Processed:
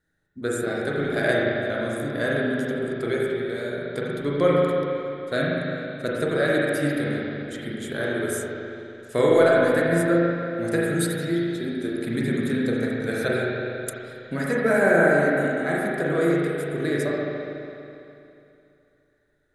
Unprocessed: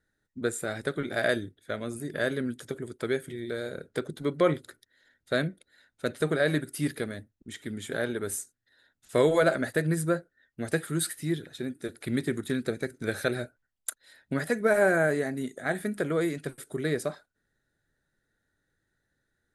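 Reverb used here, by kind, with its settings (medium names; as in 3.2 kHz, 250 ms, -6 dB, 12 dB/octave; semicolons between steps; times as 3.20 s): spring tank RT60 2.8 s, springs 35/41 ms, chirp 55 ms, DRR -5 dB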